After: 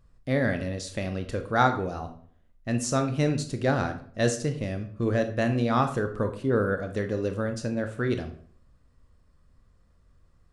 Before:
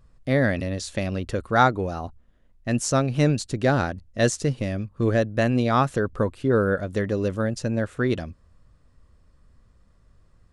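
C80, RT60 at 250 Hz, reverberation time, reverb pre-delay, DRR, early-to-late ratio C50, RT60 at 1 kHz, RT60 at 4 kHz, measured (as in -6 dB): 15.0 dB, 0.60 s, 0.55 s, 20 ms, 6.5 dB, 11.0 dB, 0.50 s, 0.40 s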